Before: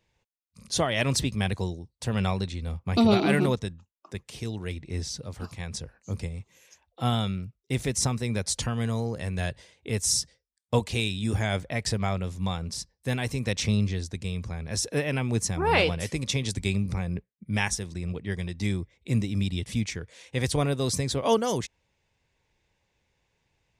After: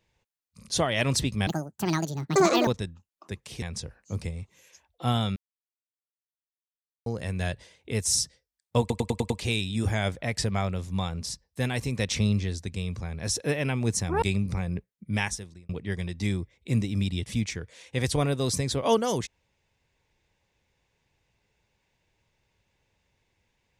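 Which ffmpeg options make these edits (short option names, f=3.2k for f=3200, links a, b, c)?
-filter_complex "[0:a]asplit=13[a][b][c][d][e][f][g][h][i][j][k][l][m];[a]atrim=end=1.474[n];[b]atrim=start=1.47:end=3.5,asetpts=PTS-STARTPTS,asetrate=74529,aresample=44100,atrim=end_sample=52972,asetpts=PTS-STARTPTS[o];[c]atrim=start=3.496:end=4.452[p];[d]atrim=start=5.598:end=7.34,asetpts=PTS-STARTPTS,afade=t=out:st=1.738:d=0.004:c=hsin[q];[e]atrim=start=7.34:end=9.04,asetpts=PTS-STARTPTS,volume=0[r];[f]atrim=start=9.04:end=10.882,asetpts=PTS-STARTPTS,afade=t=in:d=0.004:c=hsin[s];[g]atrim=start=10.778:end=10.882[t];[h]atrim=start=10.778:end=10.882[u];[i]atrim=start=10.778:end=10.882[v];[j]atrim=start=10.778:end=10.882[w];[k]atrim=start=10.778:end=15.702[x];[l]atrim=start=16.618:end=18.09,asetpts=PTS-STARTPTS,afade=t=out:st=0.912:d=0.56[y];[m]atrim=start=18.09,asetpts=PTS-STARTPTS,afade=t=in:d=0.004:c=hsin[z];[n][o]acrossfade=d=0.004:c1=hsin:c2=hsin[aa];[aa][p]acrossfade=d=0.004:c1=hsin:c2=hsin[ab];[q][r][s]concat=n=3:v=0:a=1[ac];[ab][ac]acrossfade=d=0.004:c1=hsin:c2=hsin[ad];[ad][t]acrossfade=d=0.004:c1=hsin:c2=hsin[ae];[ae][u]acrossfade=d=0.004:c1=hsin:c2=hsin[af];[af][v]acrossfade=d=0.004:c1=hsin:c2=hsin[ag];[ag][w]acrossfade=d=0.004:c1=hsin:c2=hsin[ah];[ah][x]acrossfade=d=0.004:c1=hsin:c2=hsin[ai];[y][z]concat=n=2:v=0:a=1[aj];[ai][aj]acrossfade=d=0.004:c1=hsin:c2=hsin"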